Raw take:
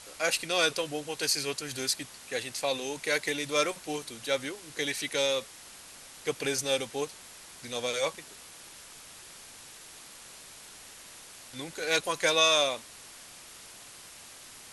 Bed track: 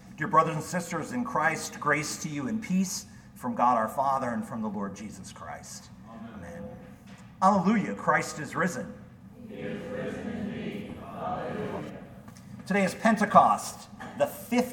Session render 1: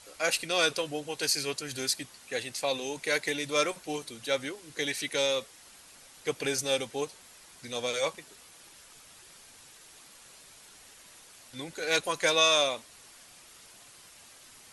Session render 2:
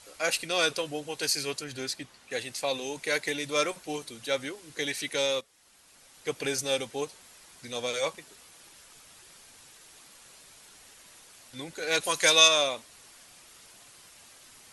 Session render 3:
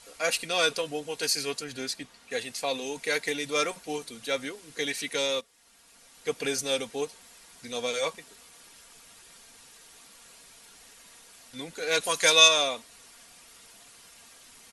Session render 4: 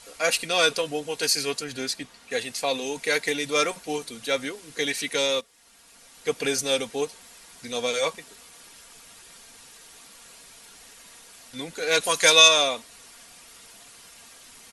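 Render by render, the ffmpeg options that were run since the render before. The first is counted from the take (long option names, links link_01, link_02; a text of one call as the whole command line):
ffmpeg -i in.wav -af "afftdn=noise_reduction=6:noise_floor=-49" out.wav
ffmpeg -i in.wav -filter_complex "[0:a]asettb=1/sr,asplit=3[link_01][link_02][link_03];[link_01]atrim=end=1.644[link_04];[link_02]atrim=start=1.64:end=2.31,asetpts=PTS-STARTPTS,afade=type=in:duration=0.004:curve=qsin,afade=type=out:start_time=0.666:duration=0.004:curve=qsin,lowpass=frequency=3500:poles=1[link_05];[link_03]atrim=start=2.306[link_06];[link_04][link_05]acrossfade=duration=0.004:curve1=hsin:curve2=qsin[link_07];[link_07][link_06]acrossfade=duration=0.004:curve1=qsin:curve2=hsin,asplit=3[link_08][link_09][link_10];[link_08]afade=type=out:start_time=12:duration=0.02[link_11];[link_09]highshelf=frequency=2400:gain=9.5,afade=type=in:start_time=12:duration=0.02,afade=type=out:start_time=12.47:duration=0.02[link_12];[link_10]afade=type=in:start_time=12.47:duration=0.02[link_13];[link_11][link_12][link_13]amix=inputs=3:normalize=0,asplit=2[link_14][link_15];[link_14]atrim=end=5.41,asetpts=PTS-STARTPTS,afade=type=out:start_time=5.406:duration=0.004:curve=hsin:silence=0.188365[link_16];[link_15]atrim=start=5.41,asetpts=PTS-STARTPTS,afade=type=in:duration=0.99:silence=0.188365[link_17];[link_16][link_17]concat=n=2:v=0:a=1" out.wav
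ffmpeg -i in.wav -af "aecho=1:1:4.3:0.38" out.wav
ffmpeg -i in.wav -af "volume=4dB,alimiter=limit=-3dB:level=0:latency=1" out.wav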